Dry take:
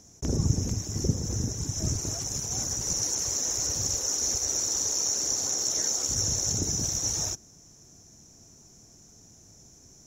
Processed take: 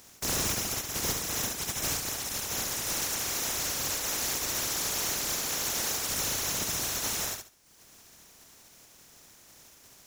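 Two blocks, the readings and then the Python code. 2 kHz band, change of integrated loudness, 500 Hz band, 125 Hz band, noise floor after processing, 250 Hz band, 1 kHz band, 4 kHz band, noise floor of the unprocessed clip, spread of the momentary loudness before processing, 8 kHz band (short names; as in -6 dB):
+11.5 dB, -2.5 dB, 0.0 dB, -12.0 dB, -56 dBFS, -6.0 dB, +6.5 dB, -0.5 dB, -54 dBFS, 5 LU, -4.5 dB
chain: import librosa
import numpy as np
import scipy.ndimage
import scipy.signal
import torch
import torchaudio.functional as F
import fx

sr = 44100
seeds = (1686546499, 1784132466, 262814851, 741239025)

p1 = fx.spec_flatten(x, sr, power=0.24)
p2 = np.clip(p1, -10.0 ** (-25.5 / 20.0), 10.0 ** (-25.5 / 20.0))
p3 = fx.dereverb_blind(p2, sr, rt60_s=0.87)
y = p3 + fx.echo_feedback(p3, sr, ms=70, feedback_pct=24, wet_db=-5.0, dry=0)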